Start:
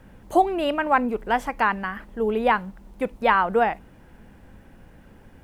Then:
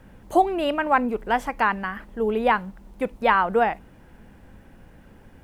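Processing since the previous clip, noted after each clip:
no processing that can be heard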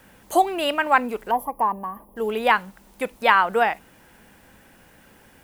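gain on a spectral selection 0:01.31–0:02.17, 1,200–10,000 Hz −26 dB
spectral tilt +3 dB per octave
level +2 dB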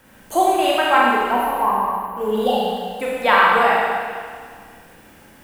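healed spectral selection 0:02.18–0:02.60, 870–2,700 Hz after
four-comb reverb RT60 1.9 s, combs from 29 ms, DRR −5 dB
level −1 dB

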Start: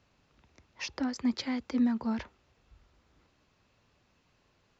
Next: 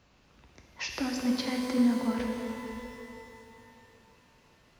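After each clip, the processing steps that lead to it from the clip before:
in parallel at +2.5 dB: downward compressor, threshold −40 dBFS, peak gain reduction 16 dB
on the sum: reverb with rising layers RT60 2.8 s, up +12 semitones, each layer −8 dB, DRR 1 dB
level −3 dB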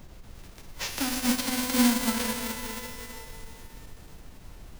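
spectral envelope flattened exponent 0.3
background noise brown −46 dBFS
every ending faded ahead of time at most 220 dB per second
level +2.5 dB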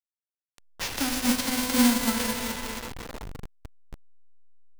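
hold until the input has moved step −32 dBFS
level +1.5 dB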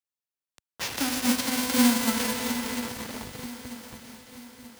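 high-pass filter 83 Hz 12 dB per octave
feedback echo with a long and a short gap by turns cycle 935 ms, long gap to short 3 to 1, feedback 45%, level −13 dB

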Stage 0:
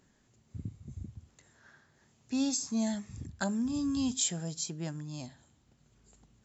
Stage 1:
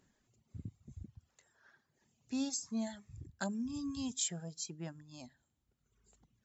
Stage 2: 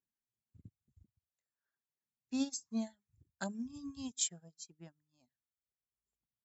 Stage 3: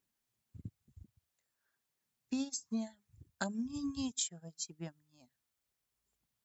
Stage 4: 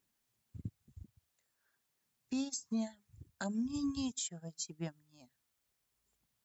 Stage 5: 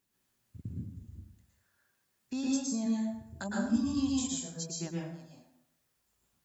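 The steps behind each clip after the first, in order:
reverb reduction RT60 1.6 s; level −5 dB
expander for the loud parts 2.5 to 1, over −53 dBFS; level +3 dB
downward compressor 10 to 1, threshold −43 dBFS, peak gain reduction 14.5 dB; level +9.5 dB
brickwall limiter −32 dBFS, peak gain reduction 10 dB; level +3.5 dB
dense smooth reverb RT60 0.83 s, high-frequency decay 0.6×, pre-delay 100 ms, DRR −4.5 dB

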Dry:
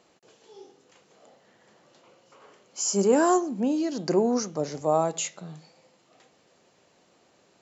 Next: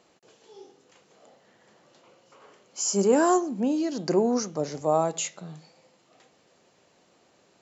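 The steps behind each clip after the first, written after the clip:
no processing that can be heard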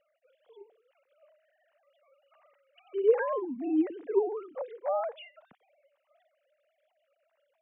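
three sine waves on the formant tracks
level −5.5 dB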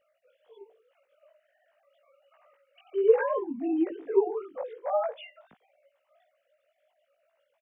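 double-tracking delay 18 ms −2 dB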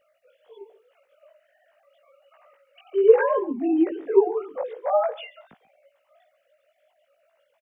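single-tap delay 137 ms −20 dB
level +6 dB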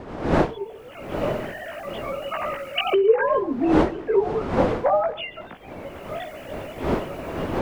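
camcorder AGC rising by 25 dB per second
wind on the microphone 430 Hz −24 dBFS
low-shelf EQ 380 Hz −8 dB

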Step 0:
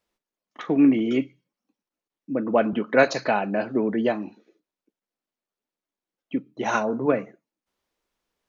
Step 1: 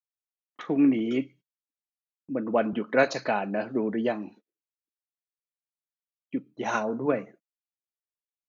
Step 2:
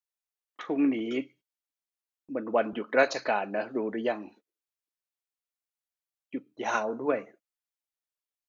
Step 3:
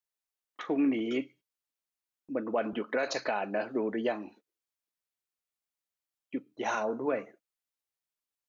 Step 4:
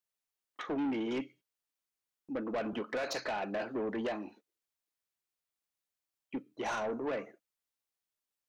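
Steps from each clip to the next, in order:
noise gate −46 dBFS, range −30 dB; level −4 dB
parametric band 150 Hz −12.5 dB 1.3 octaves
brickwall limiter −20 dBFS, peak gain reduction 11 dB
soft clipping −30 dBFS, distortion −10 dB

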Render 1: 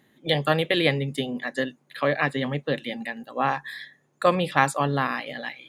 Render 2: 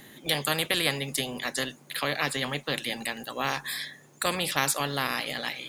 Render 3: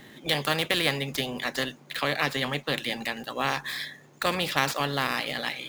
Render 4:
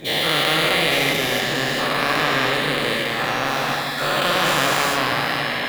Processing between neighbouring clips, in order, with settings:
high-shelf EQ 3,700 Hz +10 dB; every bin compressed towards the loudest bin 2 to 1; level −6 dB
running median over 5 samples; level +2 dB
every bin's largest magnitude spread in time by 480 ms; rectangular room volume 200 cubic metres, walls hard, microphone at 0.38 metres; level −2 dB

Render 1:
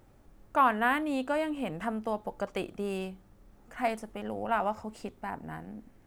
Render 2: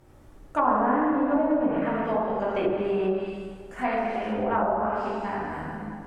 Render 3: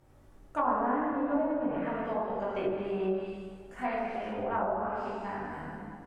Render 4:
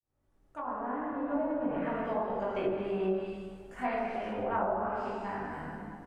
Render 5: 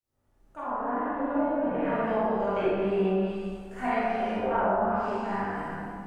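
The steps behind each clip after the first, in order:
delay that plays each chunk backwards 129 ms, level −11.5 dB; dense smooth reverb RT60 2 s, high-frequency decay 0.75×, DRR −7.5 dB; treble cut that deepens with the level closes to 760 Hz, closed at −18 dBFS
double-tracking delay 21 ms −8 dB; level −7 dB
fade in at the beginning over 1.87 s
four-comb reverb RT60 0.64 s, combs from 32 ms, DRR −4.5 dB

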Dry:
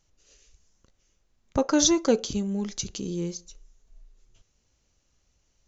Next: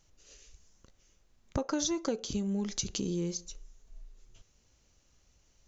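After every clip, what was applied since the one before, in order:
downward compressor 6 to 1, threshold −32 dBFS, peak gain reduction 15 dB
level +2.5 dB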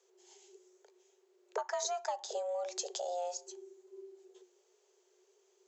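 frequency shifter +360 Hz
level −4.5 dB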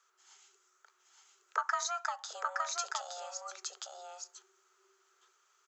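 high-pass with resonance 1,300 Hz, resonance Q 8.5
single-tap delay 867 ms −3 dB

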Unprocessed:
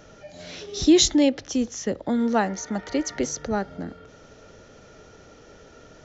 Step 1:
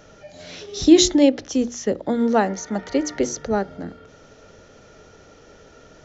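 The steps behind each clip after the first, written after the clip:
mains-hum notches 60/120/180/240/300/360 Hz
dynamic equaliser 430 Hz, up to +5 dB, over −33 dBFS, Q 0.81
level +1 dB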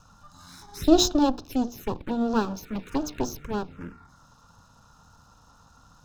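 lower of the sound and its delayed copy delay 0.78 ms
phaser swept by the level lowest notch 350 Hz, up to 2,100 Hz, full sweep at −20.5 dBFS
level −3 dB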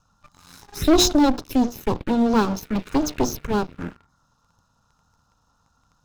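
leveller curve on the samples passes 3
level −3.5 dB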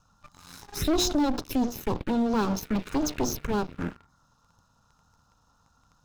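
brickwall limiter −19.5 dBFS, peak gain reduction 10 dB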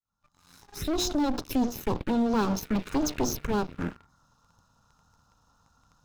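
fade in at the beginning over 1.51 s

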